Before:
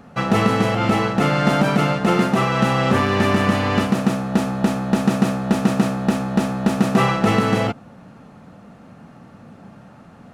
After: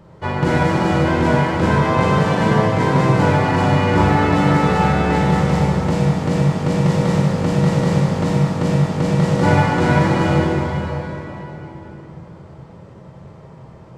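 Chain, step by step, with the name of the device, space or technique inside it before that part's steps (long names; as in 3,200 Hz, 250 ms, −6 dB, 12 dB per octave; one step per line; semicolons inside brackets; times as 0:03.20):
slowed and reverbed (speed change −26%; convolution reverb RT60 3.8 s, pre-delay 23 ms, DRR −4 dB)
level −2.5 dB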